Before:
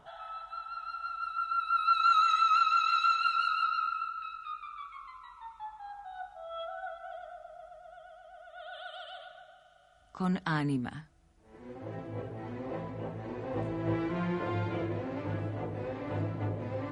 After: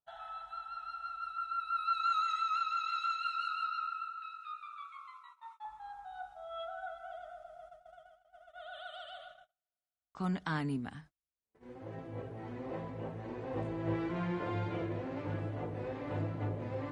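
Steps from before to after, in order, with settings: 2.99–5.65 HPF 700 Hz 12 dB/oct; gate -50 dBFS, range -38 dB; vocal rider within 3 dB 2 s; gain -5.5 dB

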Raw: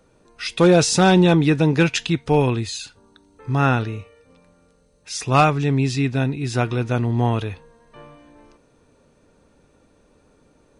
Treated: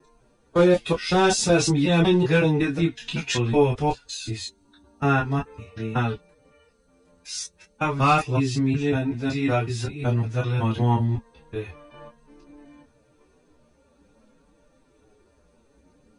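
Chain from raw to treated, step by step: slices in reverse order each 0.124 s, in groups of 3; chorus voices 6, 0.22 Hz, delay 16 ms, depth 2.6 ms; time stretch by phase-locked vocoder 1.5×; flange 0.48 Hz, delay 6.2 ms, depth 6.4 ms, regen -40%; gain +4 dB

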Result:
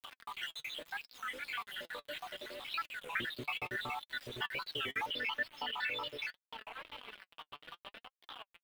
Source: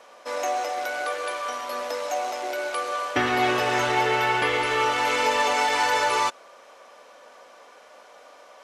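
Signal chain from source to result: random spectral dropouts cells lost 80%; outdoor echo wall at 160 m, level -23 dB; compressor 2.5:1, threshold -48 dBFS, peak gain reduction 17.5 dB; bell 520 Hz -11 dB 1.6 oct; bit-crush 9-bit; resonant high shelf 4500 Hz -7.5 dB, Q 3, from 5.06 s -13.5 dB; upward compressor, threshold -55 dBFS; flange 0.73 Hz, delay 3 ms, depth 4.1 ms, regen +49%; record warp 33 1/3 rpm, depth 250 cents; gain +11 dB

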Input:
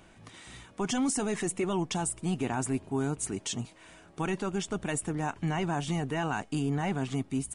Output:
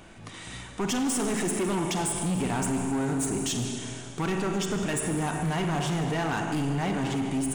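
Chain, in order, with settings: Schroeder reverb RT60 2.3 s, combs from 33 ms, DRR 4.5 dB; in parallel at +1 dB: limiter -26.5 dBFS, peak gain reduction 8.5 dB; on the sum: hard clip -24 dBFS, distortion -11 dB

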